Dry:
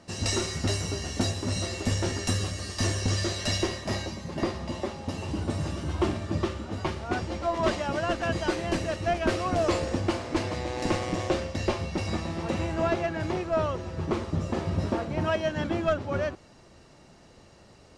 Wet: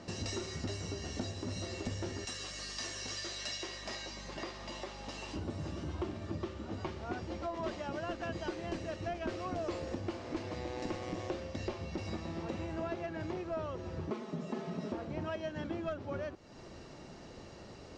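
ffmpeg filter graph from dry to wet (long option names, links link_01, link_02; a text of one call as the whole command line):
ffmpeg -i in.wav -filter_complex "[0:a]asettb=1/sr,asplit=3[link_01][link_02][link_03];[link_01]atrim=end=2.254[link_04];[link_02]atrim=start=2.25:end=5.36,asetpts=PTS-STARTPTS,afade=type=in:duration=0.004:curve=qsin,afade=type=out:start_time=3.106:duration=0.004:curve=qsin,highpass=frequency=1500:poles=1,aeval=exprs='val(0)+0.00355*(sin(2*PI*50*n/s)+sin(2*PI*2*50*n/s)/2+sin(2*PI*3*50*n/s)/3+sin(2*PI*4*50*n/s)/4+sin(2*PI*5*50*n/s)/5)':channel_layout=same[link_05];[link_03]atrim=start=5.356[link_06];[link_04][link_05]acrossfade=duration=0.004:curve1=hsin:curve2=qsin[link_07];[link_07][link_06]acrossfade=duration=0.004:curve1=qsin:curve2=hsin,asettb=1/sr,asplit=3[link_08][link_09][link_10];[link_08]atrim=end=14.104[link_11];[link_09]atrim=start=14.1:end=14.92,asetpts=PTS-STARTPTS,afade=type=in:duration=0.004:curve=qsin,afade=type=out:start_time=0.816:duration=0.004:curve=qsin,highpass=frequency=150:width=0.5412,highpass=frequency=150:width=1.3066,aecho=1:1:4.7:0.76,atrim=end_sample=36162[link_12];[link_10]atrim=start=14.916[link_13];[link_11][link_12]acrossfade=duration=0.004:curve1=hsin:curve2=qsin[link_14];[link_14][link_13]acrossfade=duration=0.004:curve1=qsin:curve2=hsin,lowpass=frequency=7100:width=0.5412,lowpass=frequency=7100:width=1.3066,equalizer=frequency=340:width_type=o:width=1.4:gain=3.5,acompressor=threshold=-43dB:ratio=3,volume=2dB" out.wav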